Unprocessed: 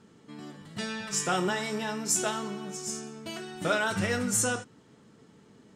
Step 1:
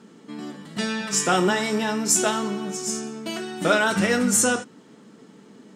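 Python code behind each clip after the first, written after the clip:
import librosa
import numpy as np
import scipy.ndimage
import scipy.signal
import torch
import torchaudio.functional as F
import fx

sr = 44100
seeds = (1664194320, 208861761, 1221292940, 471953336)

y = fx.low_shelf_res(x, sr, hz=140.0, db=-12.5, q=1.5)
y = F.gain(torch.from_numpy(y), 7.0).numpy()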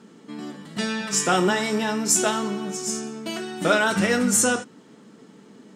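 y = x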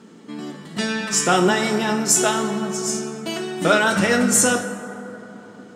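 y = fx.rev_plate(x, sr, seeds[0], rt60_s=3.5, hf_ratio=0.35, predelay_ms=0, drr_db=8.5)
y = F.gain(torch.from_numpy(y), 3.0).numpy()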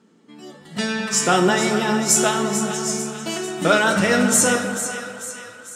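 y = fx.noise_reduce_blind(x, sr, reduce_db=11)
y = fx.echo_split(y, sr, split_hz=1100.0, low_ms=212, high_ms=444, feedback_pct=52, wet_db=-10)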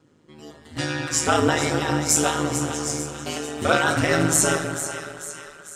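y = x * np.sin(2.0 * np.pi * 77.0 * np.arange(len(x)) / sr)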